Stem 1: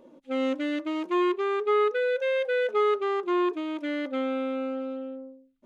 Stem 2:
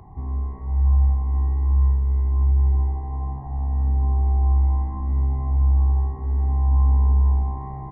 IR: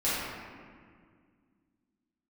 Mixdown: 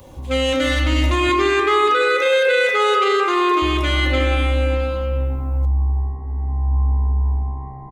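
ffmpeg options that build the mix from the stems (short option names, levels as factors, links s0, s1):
-filter_complex "[0:a]highpass=210,crystalizer=i=10:c=0,volume=1.19,asplit=3[s0][s1][s2];[s1]volume=0.376[s3];[s2]volume=0.112[s4];[1:a]volume=0.841,asplit=3[s5][s6][s7];[s5]atrim=end=1.29,asetpts=PTS-STARTPTS,afade=t=out:st=1.286:d=0.004:c=hsin[s8];[s6]atrim=start=1.29:end=3.62,asetpts=PTS-STARTPTS,volume=0[s9];[s7]atrim=start=3.62,asetpts=PTS-STARTPTS,afade=t=in:d=0.004:c=hsin[s10];[s8][s9][s10]concat=n=3:v=0:a=1,asplit=2[s11][s12];[s12]volume=0.2[s13];[2:a]atrim=start_sample=2205[s14];[s3][s14]afir=irnorm=-1:irlink=0[s15];[s4][s13]amix=inputs=2:normalize=0,aecho=0:1:308|616|924:1|0.21|0.0441[s16];[s0][s11][s15][s16]amix=inputs=4:normalize=0,alimiter=limit=0.376:level=0:latency=1:release=23"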